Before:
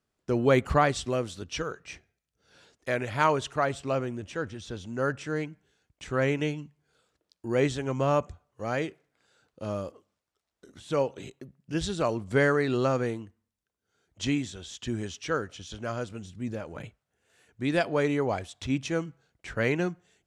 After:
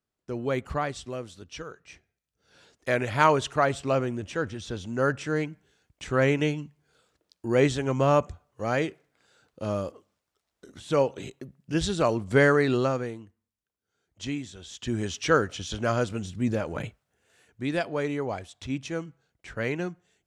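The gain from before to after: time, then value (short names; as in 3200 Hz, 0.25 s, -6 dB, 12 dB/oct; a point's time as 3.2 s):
1.85 s -6.5 dB
2.94 s +3.5 dB
12.7 s +3.5 dB
13.1 s -4.5 dB
14.46 s -4.5 dB
15.24 s +7.5 dB
16.77 s +7.5 dB
17.86 s -3 dB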